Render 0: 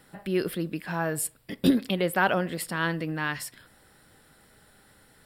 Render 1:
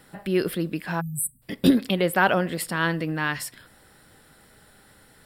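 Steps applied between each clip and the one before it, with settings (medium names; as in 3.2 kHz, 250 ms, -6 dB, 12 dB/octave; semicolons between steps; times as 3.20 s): spectral selection erased 1.01–1.42 s, 260–7700 Hz; trim +3.5 dB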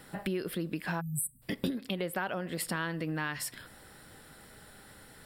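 compression 12:1, threshold -31 dBFS, peak gain reduction 19 dB; trim +1 dB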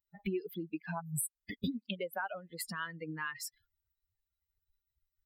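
expander on every frequency bin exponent 3; trim +1.5 dB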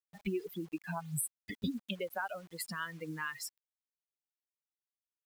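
bit crusher 10-bit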